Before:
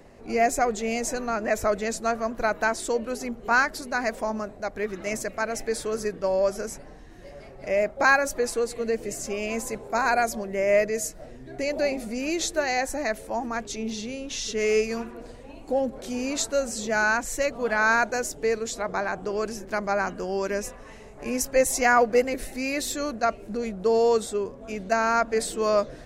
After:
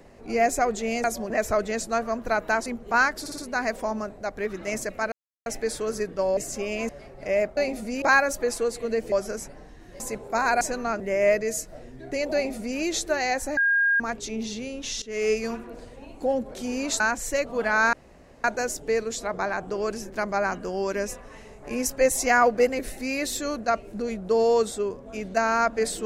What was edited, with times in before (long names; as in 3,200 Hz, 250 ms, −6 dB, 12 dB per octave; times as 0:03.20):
0:01.04–0:01.43: swap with 0:10.21–0:10.47
0:02.79–0:03.23: remove
0:03.77: stutter 0.06 s, 4 plays
0:05.51: splice in silence 0.34 s
0:06.42–0:07.30: swap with 0:09.08–0:09.60
0:11.81–0:12.26: duplicate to 0:07.98
0:13.04–0:13.47: beep over 1,620 Hz −18 dBFS
0:14.49–0:14.93: fade in equal-power, from −18 dB
0:16.47–0:17.06: remove
0:17.99: splice in room tone 0.51 s